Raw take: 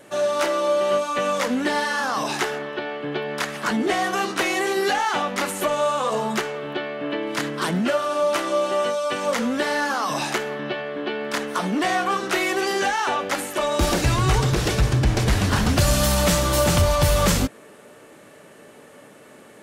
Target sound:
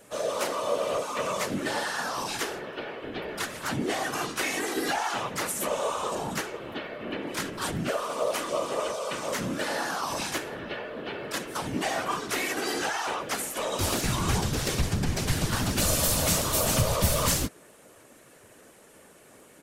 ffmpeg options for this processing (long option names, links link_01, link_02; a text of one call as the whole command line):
ffmpeg -i in.wav -filter_complex "[0:a]crystalizer=i=1.5:c=0,afftfilt=real='hypot(re,im)*cos(2*PI*random(0))':imag='hypot(re,im)*sin(2*PI*random(1))':win_size=512:overlap=0.75,asplit=2[link_01][link_02];[link_02]asetrate=37084,aresample=44100,atempo=1.18921,volume=-5dB[link_03];[link_01][link_03]amix=inputs=2:normalize=0,volume=-3dB" out.wav